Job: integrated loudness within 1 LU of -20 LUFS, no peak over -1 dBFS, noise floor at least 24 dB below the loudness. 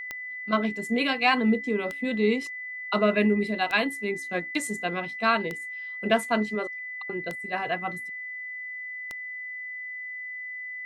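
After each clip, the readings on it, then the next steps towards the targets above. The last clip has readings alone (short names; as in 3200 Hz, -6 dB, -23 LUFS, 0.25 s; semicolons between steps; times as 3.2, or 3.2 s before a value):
clicks 6; steady tone 2000 Hz; tone level -34 dBFS; loudness -28.0 LUFS; peak -8.5 dBFS; loudness target -20.0 LUFS
-> de-click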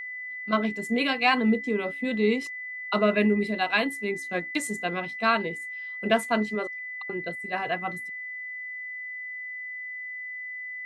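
clicks 0; steady tone 2000 Hz; tone level -34 dBFS
-> notch 2000 Hz, Q 30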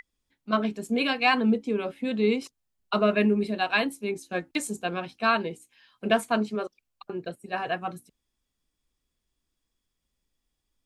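steady tone none; loudness -27.0 LUFS; peak -9.0 dBFS; loudness target -20.0 LUFS
-> gain +7 dB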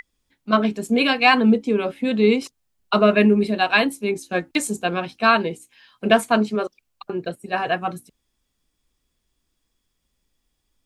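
loudness -20.0 LUFS; peak -2.0 dBFS; noise floor -75 dBFS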